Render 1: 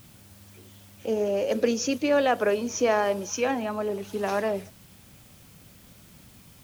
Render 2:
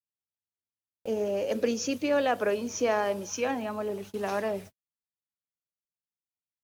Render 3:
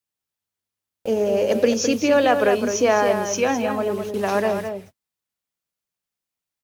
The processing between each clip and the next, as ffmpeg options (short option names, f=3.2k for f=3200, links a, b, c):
-af "agate=range=-56dB:threshold=-39dB:ratio=16:detection=peak,volume=-3.5dB"
-filter_complex "[0:a]asplit=2[a][b];[b]adelay=209.9,volume=-7dB,highshelf=f=4k:g=-4.72[c];[a][c]amix=inputs=2:normalize=0,volume=8.5dB"